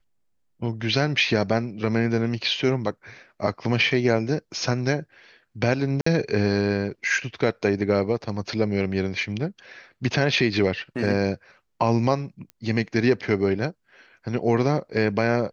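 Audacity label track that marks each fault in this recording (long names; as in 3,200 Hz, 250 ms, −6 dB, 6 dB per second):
6.010000	6.060000	drop-out 54 ms
12.500000	12.500000	click −25 dBFS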